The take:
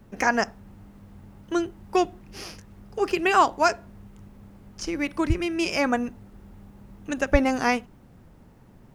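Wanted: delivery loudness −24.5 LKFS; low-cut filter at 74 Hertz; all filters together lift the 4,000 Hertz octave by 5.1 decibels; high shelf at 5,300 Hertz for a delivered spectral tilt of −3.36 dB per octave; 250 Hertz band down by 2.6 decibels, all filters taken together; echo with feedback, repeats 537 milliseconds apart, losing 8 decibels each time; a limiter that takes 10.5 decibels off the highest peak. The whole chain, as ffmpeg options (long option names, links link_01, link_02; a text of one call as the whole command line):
ffmpeg -i in.wav -af "highpass=74,equalizer=frequency=250:width_type=o:gain=-3.5,equalizer=frequency=4000:width_type=o:gain=4,highshelf=frequency=5300:gain=6.5,alimiter=limit=-15.5dB:level=0:latency=1,aecho=1:1:537|1074|1611|2148|2685:0.398|0.159|0.0637|0.0255|0.0102,volume=5dB" out.wav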